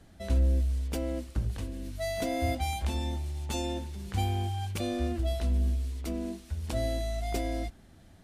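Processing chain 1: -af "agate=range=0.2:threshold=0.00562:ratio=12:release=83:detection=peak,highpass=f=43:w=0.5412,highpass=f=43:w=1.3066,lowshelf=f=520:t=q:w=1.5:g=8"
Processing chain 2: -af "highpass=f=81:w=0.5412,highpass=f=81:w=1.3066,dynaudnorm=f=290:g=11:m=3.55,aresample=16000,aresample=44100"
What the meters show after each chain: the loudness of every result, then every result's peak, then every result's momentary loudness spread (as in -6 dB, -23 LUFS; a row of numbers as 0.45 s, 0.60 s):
-25.0 LUFS, -25.0 LUFS; -9.0 dBFS, -7.5 dBFS; 8 LU, 13 LU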